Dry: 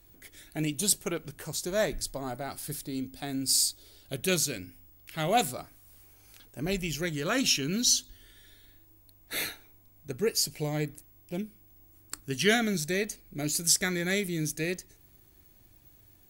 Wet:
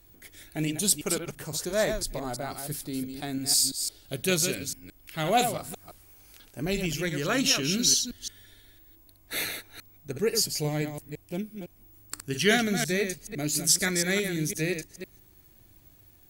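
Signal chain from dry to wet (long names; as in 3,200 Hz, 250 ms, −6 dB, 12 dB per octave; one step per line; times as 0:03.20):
delay that plays each chunk backwards 169 ms, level −7 dB
level +1.5 dB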